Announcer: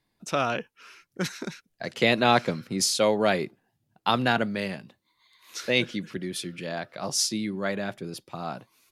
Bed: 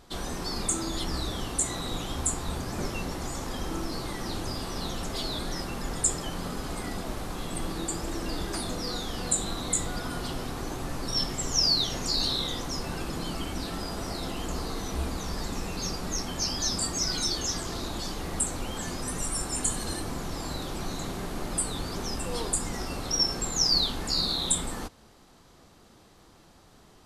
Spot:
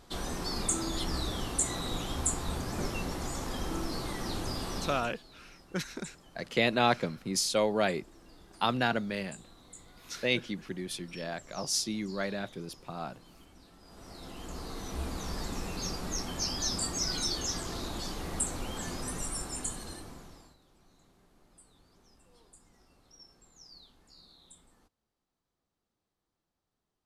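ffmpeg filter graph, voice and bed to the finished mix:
ffmpeg -i stem1.wav -i stem2.wav -filter_complex "[0:a]adelay=4550,volume=-5dB[link_01];[1:a]volume=18dB,afade=type=out:start_time=4.75:duration=0.41:silence=0.0841395,afade=type=in:start_time=13.81:duration=1.48:silence=0.1,afade=type=out:start_time=19.01:duration=1.55:silence=0.0446684[link_02];[link_01][link_02]amix=inputs=2:normalize=0" out.wav

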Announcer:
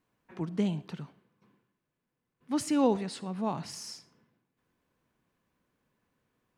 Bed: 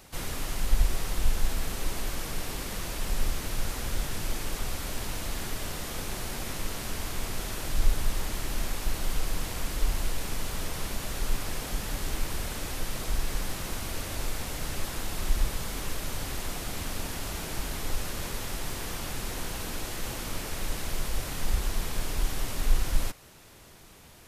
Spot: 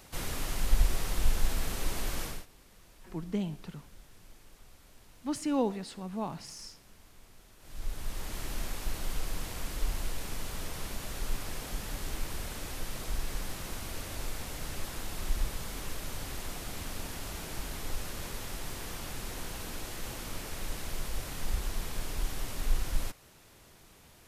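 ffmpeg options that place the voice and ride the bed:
ffmpeg -i stem1.wav -i stem2.wav -filter_complex "[0:a]adelay=2750,volume=-3.5dB[link_01];[1:a]volume=17dB,afade=type=out:start_time=2.23:duration=0.23:silence=0.0794328,afade=type=in:start_time=7.59:duration=0.83:silence=0.11885[link_02];[link_01][link_02]amix=inputs=2:normalize=0" out.wav

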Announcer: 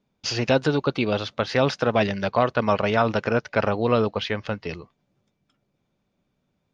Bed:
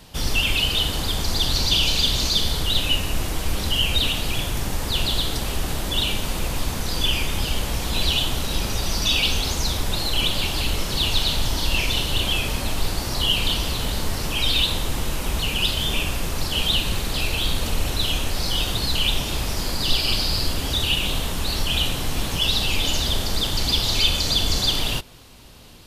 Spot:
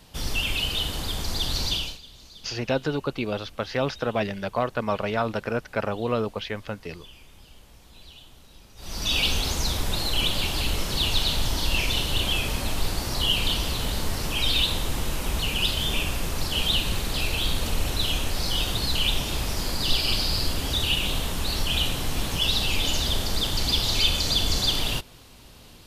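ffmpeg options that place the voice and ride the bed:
ffmpeg -i stem1.wav -i stem2.wav -filter_complex "[0:a]adelay=2200,volume=-5dB[link_01];[1:a]volume=18.5dB,afade=type=out:start_time=1.67:duration=0.32:silence=0.0891251,afade=type=in:start_time=8.76:duration=0.44:silence=0.0630957[link_02];[link_01][link_02]amix=inputs=2:normalize=0" out.wav

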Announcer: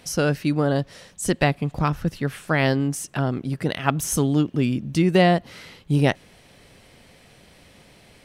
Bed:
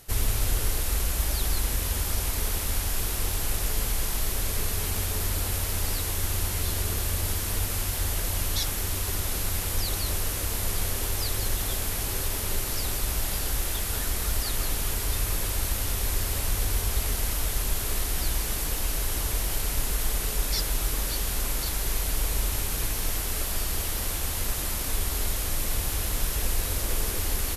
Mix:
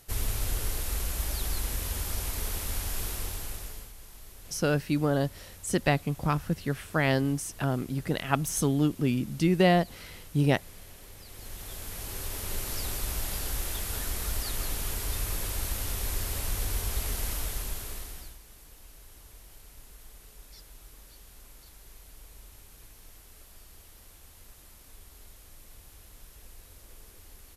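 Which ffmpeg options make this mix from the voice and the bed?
ffmpeg -i stem1.wav -i stem2.wav -filter_complex "[0:a]adelay=4450,volume=-5dB[link_01];[1:a]volume=11.5dB,afade=type=out:start_time=3.06:duration=0.86:silence=0.158489,afade=type=in:start_time=11.25:duration=1.48:silence=0.149624,afade=type=out:start_time=17.33:duration=1.05:silence=0.112202[link_02];[link_01][link_02]amix=inputs=2:normalize=0" out.wav

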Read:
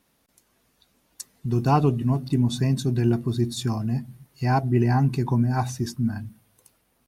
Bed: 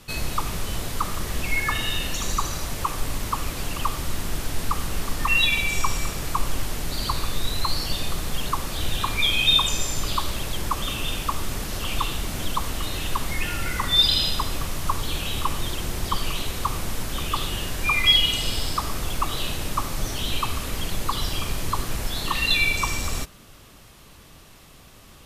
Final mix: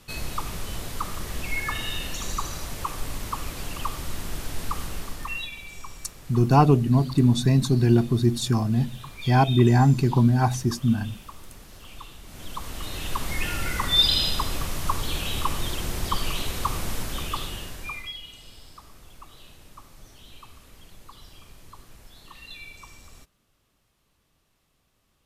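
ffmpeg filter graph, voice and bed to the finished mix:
ffmpeg -i stem1.wav -i stem2.wav -filter_complex "[0:a]adelay=4850,volume=3dB[link_01];[1:a]volume=11.5dB,afade=type=out:start_time=4.82:duration=0.69:silence=0.237137,afade=type=in:start_time=12.23:duration=1.21:silence=0.158489,afade=type=out:start_time=16.94:duration=1.18:silence=0.0944061[link_02];[link_01][link_02]amix=inputs=2:normalize=0" out.wav

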